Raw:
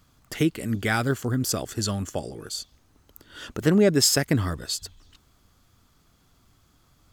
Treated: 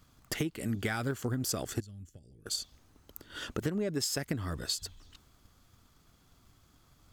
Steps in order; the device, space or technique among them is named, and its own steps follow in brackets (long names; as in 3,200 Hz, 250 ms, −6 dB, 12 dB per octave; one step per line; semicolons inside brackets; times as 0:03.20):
drum-bus smash (transient designer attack +6 dB, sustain +2 dB; downward compressor 10 to 1, threshold −25 dBFS, peak gain reduction 15.5 dB; soft clipping −17 dBFS, distortion −21 dB)
0:01.80–0:02.46: guitar amp tone stack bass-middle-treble 10-0-1
level −3 dB